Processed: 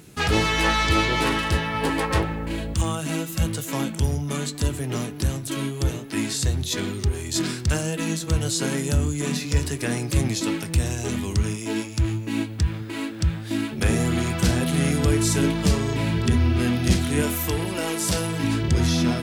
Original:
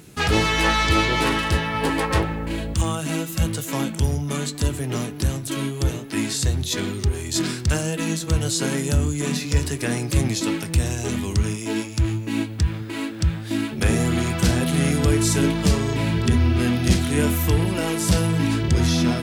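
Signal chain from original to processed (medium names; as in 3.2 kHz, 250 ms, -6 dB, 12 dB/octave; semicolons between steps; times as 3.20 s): 17.22–18.44 s: tone controls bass -7 dB, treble +2 dB; trim -1.5 dB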